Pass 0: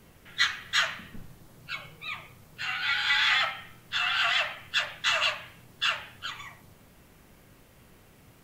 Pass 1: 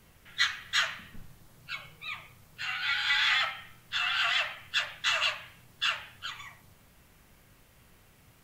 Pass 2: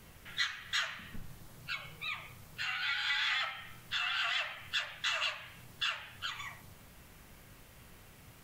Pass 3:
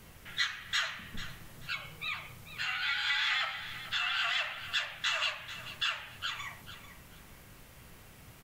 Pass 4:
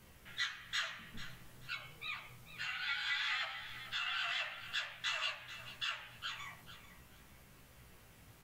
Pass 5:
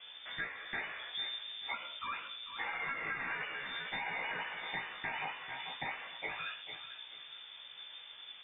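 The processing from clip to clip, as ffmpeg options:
-af "equalizer=f=330:w=0.53:g=-6,volume=0.841"
-af "acompressor=threshold=0.00794:ratio=2,volume=1.5"
-af "aecho=1:1:442|884|1326:0.224|0.056|0.014,volume=1.26"
-af "flanger=delay=15:depth=3.1:speed=0.54,volume=0.668"
-af "aemphasis=mode=reproduction:type=75kf,acompressor=threshold=0.00562:ratio=6,lowpass=f=3100:t=q:w=0.5098,lowpass=f=3100:t=q:w=0.6013,lowpass=f=3100:t=q:w=0.9,lowpass=f=3100:t=q:w=2.563,afreqshift=-3600,volume=3.16"

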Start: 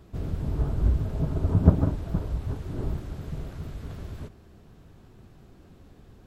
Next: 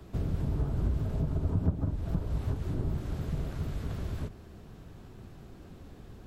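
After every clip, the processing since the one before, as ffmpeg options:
-filter_complex "[0:a]acrossover=split=88|220[s0][s1][s2];[s0]acompressor=threshold=0.0178:ratio=4[s3];[s1]acompressor=threshold=0.0178:ratio=4[s4];[s2]acompressor=threshold=0.00631:ratio=4[s5];[s3][s4][s5]amix=inputs=3:normalize=0,volume=1.41"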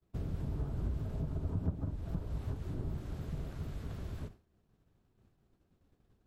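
-af "agate=range=0.0224:threshold=0.0158:ratio=3:detection=peak,volume=0.473"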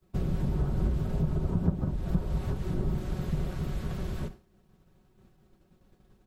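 -af "aecho=1:1:5.4:0.5,volume=2.66"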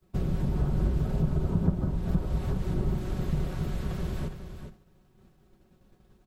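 -af "aecho=1:1:414:0.355,volume=1.12"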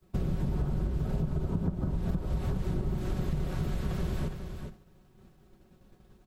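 -af "acompressor=threshold=0.0398:ratio=6,volume=1.26"

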